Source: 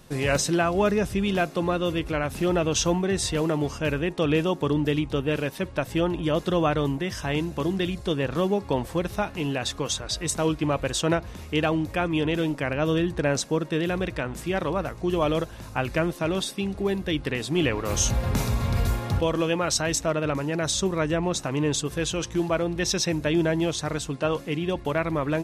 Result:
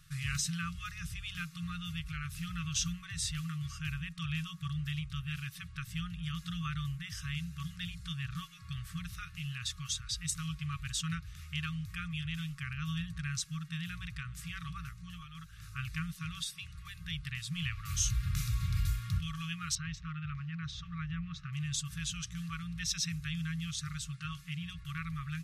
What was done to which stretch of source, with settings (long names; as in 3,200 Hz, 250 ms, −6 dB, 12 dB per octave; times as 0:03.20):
0:14.90–0:15.69: duck −14 dB, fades 0.39 s linear
0:19.75–0:21.53: high-frequency loss of the air 280 metres
whole clip: brick-wall band-stop 180–1,100 Hz; dynamic equaliser 1,400 Hz, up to −6 dB, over −45 dBFS, Q 1.1; level −7 dB